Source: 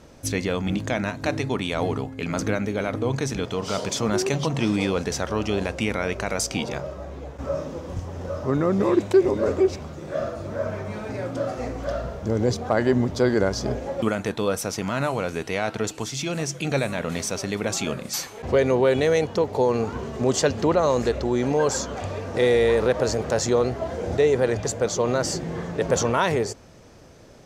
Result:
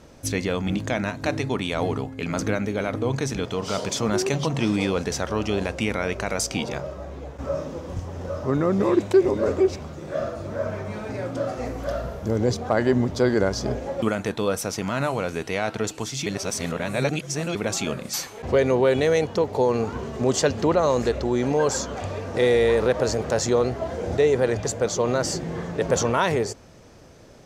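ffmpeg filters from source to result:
-filter_complex "[0:a]asettb=1/sr,asplit=3[a][b][c];[a]atrim=end=11.654[d];[b]atrim=start=11.65:end=12.37,asetpts=PTS-STARTPTS,afade=t=in:d=0.004:c=qsin,afade=t=out:st=0.716:d=0.004:c=qsin,equalizer=f=12k:t=o:w=0.41:g=10.5[e];[c]atrim=start=12.366[f];[d][e]acrossfade=d=0.004:c1=hsin:c2=qsin[g];[g][f]acrossfade=d=0.004:c1=qsin:c2=hsin,asplit=3[h][i][j];[h]atrim=end=16.262[k];[i]atrim=start=16.258:end=17.552,asetpts=PTS-STARTPTS,areverse[l];[j]atrim=start=17.548[m];[k][l]acrossfade=d=0.004:c1=hsin:c2=hsin[n];[n][m]acrossfade=d=0.004:c1=hsin:c2=hsin"

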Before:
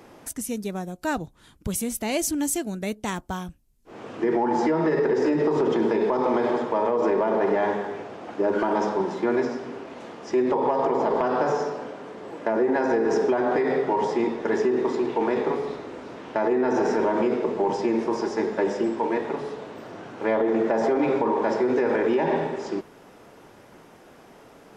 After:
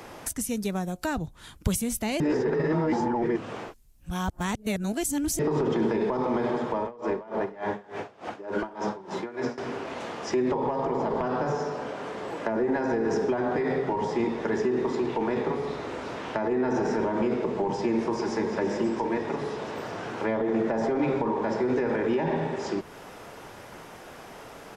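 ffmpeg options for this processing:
-filter_complex "[0:a]asettb=1/sr,asplit=3[a][b][c];[a]atrim=end=6.824[d];[b]atrim=start=6.82:end=9.58,asetpts=PTS-STARTPTS,afade=t=in:d=0.004:c=qsin,afade=t=out:st=2.756:d=0.004:c=qsin,aeval=exprs='val(0)*pow(10,-23*(0.5-0.5*cos(2*PI*3.4*n/s))/20)':c=same[e];[c]atrim=start=9.576[f];[d][e]acrossfade=d=0.004:c1=hsin:c2=qsin[g];[g][f]acrossfade=d=0.004:c1=qsin:c2=hsin,asplit=2[h][i];[i]afade=t=in:st=17.85:d=0.01,afade=t=out:st=18.52:d=0.01,aecho=0:1:340|680|1020|1360|1700|2040|2380|2720|3060|3400:0.334965|0.234476|0.164133|0.114893|0.0804252|0.0562976|0.0394083|0.0275858|0.0193101|0.0135171[j];[h][j]amix=inputs=2:normalize=0,asplit=3[k][l][m];[k]atrim=end=2.202[n];[l]atrim=start=2.198:end=5.392,asetpts=PTS-STARTPTS,areverse[o];[m]atrim=start=5.388[p];[n][o]acrossfade=d=0.004:c1=hsin:c2=hsin[q];[q][p]acrossfade=d=0.004:c1=hsin:c2=hsin,equalizer=f=270:t=o:w=1.9:g=-6.5,acrossover=split=280[r][s];[s]acompressor=threshold=-40dB:ratio=3[t];[r][t]amix=inputs=2:normalize=0,volume=8dB"

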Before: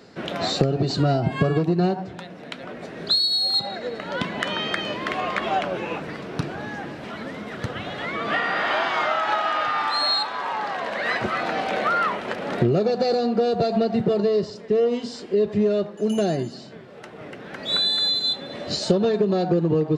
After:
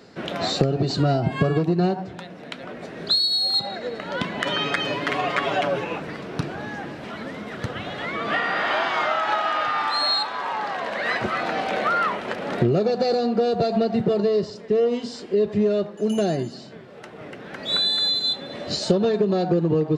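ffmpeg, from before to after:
-filter_complex "[0:a]asettb=1/sr,asplit=3[a][b][c];[a]atrim=end=4.454[d];[b]atrim=start=4.45:end=5.84,asetpts=PTS-STARTPTS,afade=t=in:d=0.004:c=qsin,afade=t=out:st=1.386:d=0.004:c=qsin,aecho=1:1:7.1:0.94,atrim=end_sample=61299[e];[c]atrim=start=5.836[f];[d][e]acrossfade=d=0.004:c1=hsin:c2=qsin[g];[g][f]acrossfade=d=0.004:c1=qsin:c2=hsin"

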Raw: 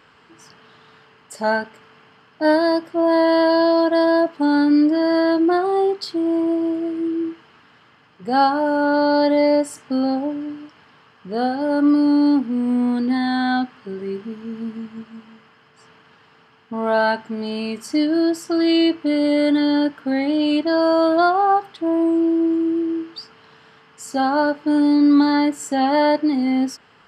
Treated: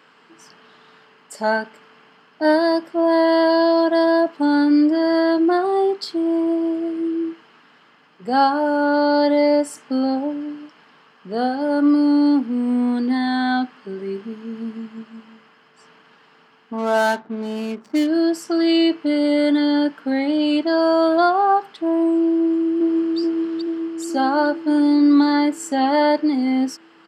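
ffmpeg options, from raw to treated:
-filter_complex "[0:a]asplit=3[a][b][c];[a]afade=t=out:st=16.77:d=0.02[d];[b]adynamicsmooth=sensitivity=5:basefreq=580,afade=t=in:st=16.77:d=0.02,afade=t=out:st=18.07:d=0.02[e];[c]afade=t=in:st=18.07:d=0.02[f];[d][e][f]amix=inputs=3:normalize=0,asplit=2[g][h];[h]afade=t=in:st=22.37:d=0.01,afade=t=out:st=23.18:d=0.01,aecho=0:1:430|860|1290|1720|2150|2580|3010|3440|3870|4300|4730:0.891251|0.579313|0.376554|0.24476|0.159094|0.103411|0.0672172|0.0436912|0.0283992|0.0184595|0.0119987[i];[g][i]amix=inputs=2:normalize=0,highpass=f=170:w=0.5412,highpass=f=170:w=1.3066"

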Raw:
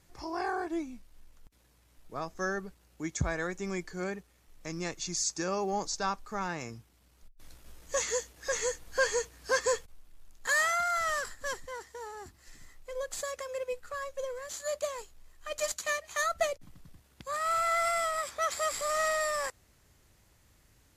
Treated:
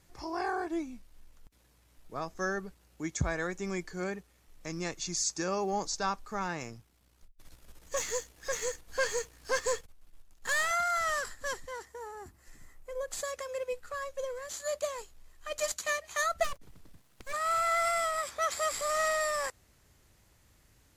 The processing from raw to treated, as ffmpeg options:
-filter_complex "[0:a]asettb=1/sr,asplit=3[a][b][c];[a]atrim=end=6.634[d];[b]atrim=start=6.63:end=10.71,asetpts=PTS-STARTPTS,afade=t=in:d=0.004:c=qsin,afade=t=out:st=4.076:d=0.004:c=qsin,aeval=exprs='if(lt(val(0),0),0.447*val(0),val(0))':c=same[e];[c]atrim=start=10.706[f];[d][e]acrossfade=d=0.004:c1=hsin:c2=qsin[g];[g][f]acrossfade=d=0.004:c1=qsin:c2=hsin,asettb=1/sr,asplit=3[h][i][j];[h]atrim=end=11.854[k];[i]atrim=start=11.85:end=13.08,asetpts=PTS-STARTPTS,afade=t=in:d=0.004:c=qsin,afade=t=out:st=1.226:d=0.004:c=qsin,equalizer=f=4.1k:t=o:w=1.6:g=-8[l];[j]atrim=start=13.076[m];[k][l]acrossfade=d=0.004:c1=hsin:c2=qsin[n];[n][m]acrossfade=d=0.004:c1=qsin:c2=hsin,asplit=3[o][p][q];[o]afade=t=out:st=16.43:d=0.02[r];[p]aeval=exprs='abs(val(0))':c=same,afade=t=in:st=16.43:d=0.02,afade=t=out:st=17.32:d=0.02[s];[q]afade=t=in:st=17.32:d=0.02[t];[r][s][t]amix=inputs=3:normalize=0"

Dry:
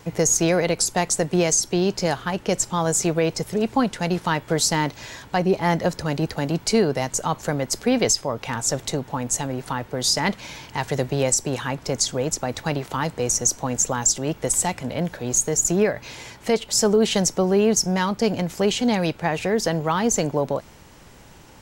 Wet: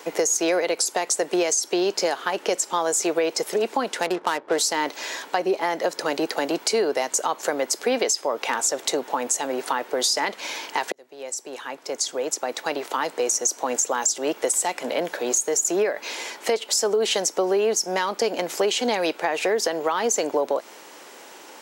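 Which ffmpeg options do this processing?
-filter_complex "[0:a]asettb=1/sr,asplit=3[a][b][c];[a]atrim=end=4.024[d];[b]atrim=start=4.02:end=4.58,asetpts=PTS-STARTPTS,afade=t=in:d=0.004:c=qsin,afade=t=out:st=0.556:d=0.004:c=qsin,adynamicsmooth=sensitivity=5.5:basefreq=510[e];[c]atrim=start=4.576[f];[d][e]acrossfade=d=0.004:c1=hsin:c2=qsin[g];[g][f]acrossfade=d=0.004:c1=qsin:c2=hsin,asplit=2[h][i];[h]atrim=end=10.92,asetpts=PTS-STARTPTS,afade=t=out:st=10.916:d=0.004:c=hsin[j];[i]atrim=start=10.92,asetpts=PTS-STARTPTS,afade=t=in:d=2.9[k];[j][k]concat=n=2:v=0:a=1,highpass=f=330:w=0.5412,highpass=f=330:w=1.3066,alimiter=limit=-13.5dB:level=0:latency=1:release=202,acompressor=threshold=-27dB:ratio=3,volume=6.5dB"

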